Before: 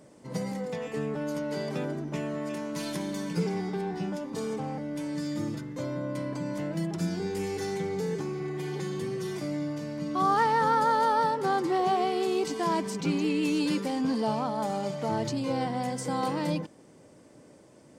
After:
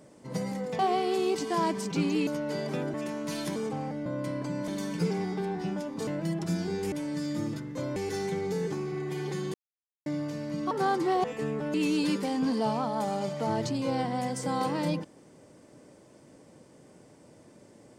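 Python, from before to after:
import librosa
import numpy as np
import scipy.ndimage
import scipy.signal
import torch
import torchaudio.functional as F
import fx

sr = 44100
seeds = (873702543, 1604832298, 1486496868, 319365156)

y = fx.edit(x, sr, fx.swap(start_s=0.79, length_s=0.5, other_s=11.88, other_length_s=1.48),
    fx.cut(start_s=1.96, length_s=0.46),
    fx.move(start_s=3.04, length_s=1.39, to_s=6.59),
    fx.move(start_s=4.93, length_s=1.04, to_s=7.44),
    fx.silence(start_s=9.02, length_s=0.52),
    fx.cut(start_s=10.19, length_s=1.16), tone=tone)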